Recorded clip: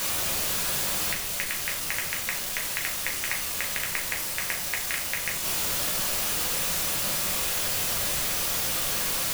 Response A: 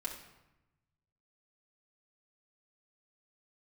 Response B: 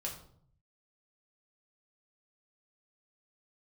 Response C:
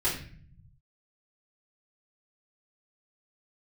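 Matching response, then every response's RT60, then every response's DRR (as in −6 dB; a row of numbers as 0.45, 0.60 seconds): B; 0.95, 0.60, 0.45 seconds; −3.5, −2.0, −9.5 decibels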